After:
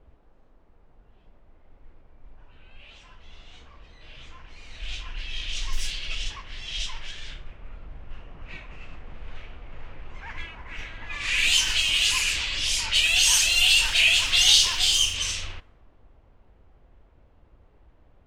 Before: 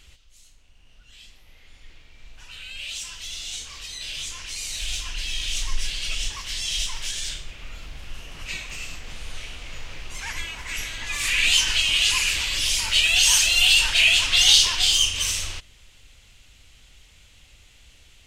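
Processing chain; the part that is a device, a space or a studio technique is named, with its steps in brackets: cassette deck with a dynamic noise filter (white noise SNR 24 dB; level-controlled noise filter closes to 610 Hz, open at -17.5 dBFS); trim -2 dB

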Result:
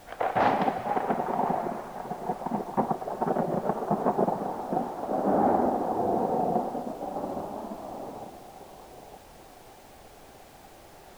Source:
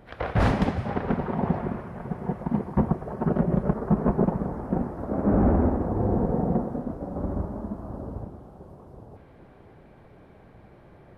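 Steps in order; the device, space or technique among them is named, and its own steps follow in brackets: horn gramophone (band-pass 290–4200 Hz; peaking EQ 770 Hz +9.5 dB 0.5 oct; wow and flutter; pink noise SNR 24 dB); trim -1 dB

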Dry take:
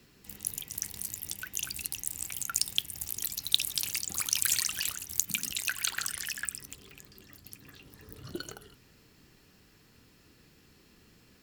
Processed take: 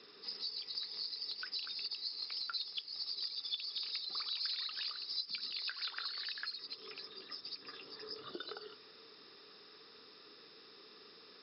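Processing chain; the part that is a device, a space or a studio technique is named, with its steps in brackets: hearing aid with frequency lowering (knee-point frequency compression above 3.4 kHz 4:1; compression 3:1, threshold -45 dBFS, peak gain reduction 19.5 dB; cabinet simulation 360–6900 Hz, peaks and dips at 430 Hz +10 dB, 1.2 kHz +9 dB, 5.8 kHz +8 dB); trim +1 dB

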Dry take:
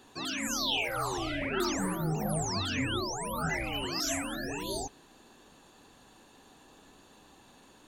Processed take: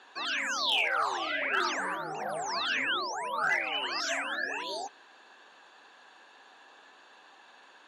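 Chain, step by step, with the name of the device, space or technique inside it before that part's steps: megaphone (band-pass 690–3800 Hz; peaking EQ 1.6 kHz +6.5 dB 0.25 oct; hard clipper -25.5 dBFS, distortion -28 dB); trim +5 dB

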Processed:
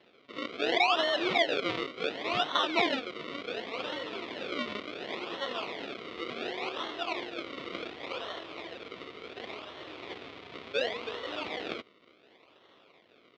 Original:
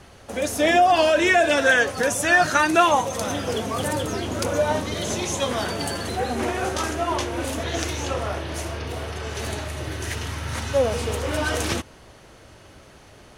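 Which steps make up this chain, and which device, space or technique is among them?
circuit-bent sampling toy (decimation with a swept rate 36×, swing 100% 0.69 Hz; cabinet simulation 460–4000 Hz, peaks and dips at 590 Hz -5 dB, 850 Hz -8 dB, 1.6 kHz -8 dB, 2.2 kHz +4 dB, 3.5 kHz +5 dB); trim -5.5 dB

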